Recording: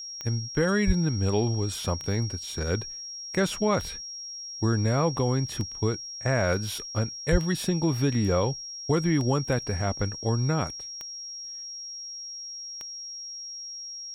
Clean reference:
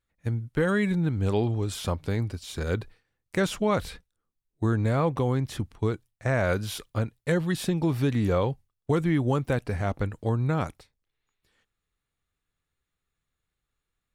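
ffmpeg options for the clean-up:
-filter_complex "[0:a]adeclick=t=4,bandreject=f=5.6k:w=30,asplit=3[a][b][c];[a]afade=t=out:st=0.86:d=0.02[d];[b]highpass=f=140:w=0.5412,highpass=f=140:w=1.3066,afade=t=in:st=0.86:d=0.02,afade=t=out:st=0.98:d=0.02[e];[c]afade=t=in:st=0.98:d=0.02[f];[d][e][f]amix=inputs=3:normalize=0,asplit=3[g][h][i];[g]afade=t=out:st=7.31:d=0.02[j];[h]highpass=f=140:w=0.5412,highpass=f=140:w=1.3066,afade=t=in:st=7.31:d=0.02,afade=t=out:st=7.43:d=0.02[k];[i]afade=t=in:st=7.43:d=0.02[l];[j][k][l]amix=inputs=3:normalize=0"

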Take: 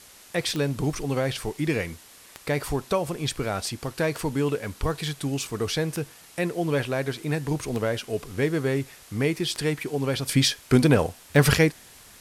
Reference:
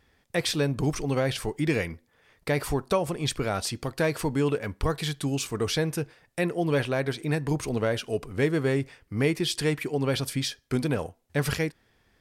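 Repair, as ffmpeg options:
-af "adeclick=t=4,afwtdn=0.004,asetnsamples=n=441:p=0,asendcmd='10.29 volume volume -8.5dB',volume=0dB"

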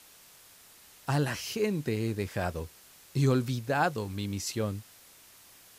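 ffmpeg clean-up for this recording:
-af "afwtdn=0.002"

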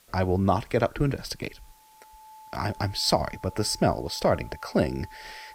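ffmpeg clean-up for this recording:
-af "bandreject=f=870:w=30,agate=range=-21dB:threshold=-43dB"

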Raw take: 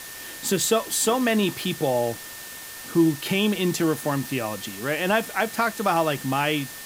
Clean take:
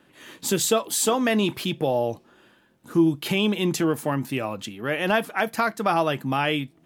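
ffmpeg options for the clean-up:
-af "bandreject=f=1.8k:w=30,afwtdn=0.013"

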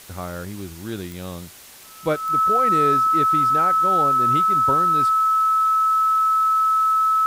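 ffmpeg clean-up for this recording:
-af "adeclick=t=4,bandreject=f=1.3k:w=30,afwtdn=0.0071"

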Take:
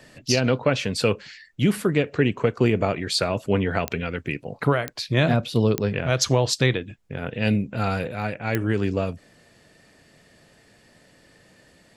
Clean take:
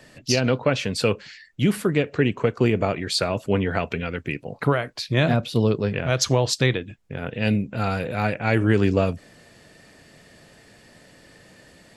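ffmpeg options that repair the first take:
-af "adeclick=t=4,asetnsamples=n=441:p=0,asendcmd='8.08 volume volume 4.5dB',volume=0dB"

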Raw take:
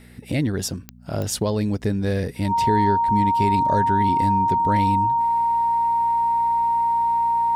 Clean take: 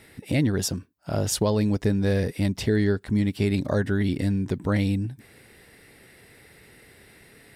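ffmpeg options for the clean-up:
-af "adeclick=t=4,bandreject=f=60.1:t=h:w=4,bandreject=f=120.2:t=h:w=4,bandreject=f=180.3:t=h:w=4,bandreject=f=240.4:t=h:w=4,bandreject=f=930:w=30"

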